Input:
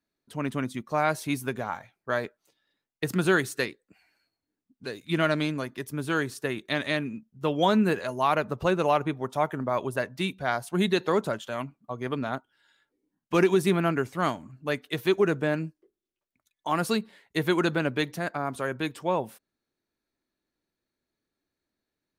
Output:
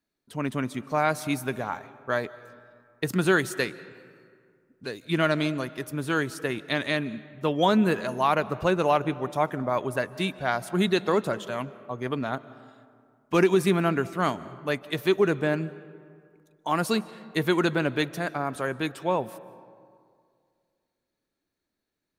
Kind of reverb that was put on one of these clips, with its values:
comb and all-pass reverb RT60 2.2 s, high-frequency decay 0.5×, pre-delay 110 ms, DRR 17.5 dB
level +1 dB

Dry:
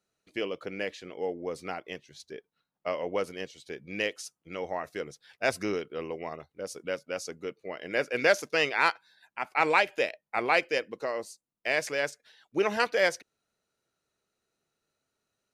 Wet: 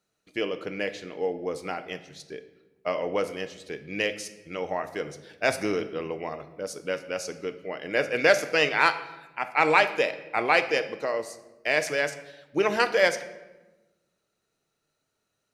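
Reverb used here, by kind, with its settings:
rectangular room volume 580 cubic metres, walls mixed, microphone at 0.46 metres
level +3 dB

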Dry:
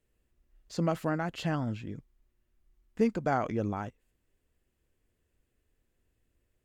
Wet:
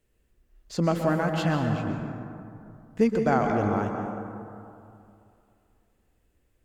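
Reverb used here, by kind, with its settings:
dense smooth reverb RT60 2.6 s, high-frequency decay 0.35×, pre-delay 110 ms, DRR 3 dB
level +4.5 dB

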